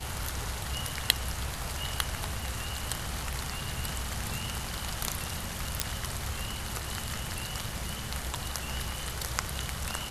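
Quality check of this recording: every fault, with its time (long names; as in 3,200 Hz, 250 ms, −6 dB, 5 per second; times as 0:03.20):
0:05.80: click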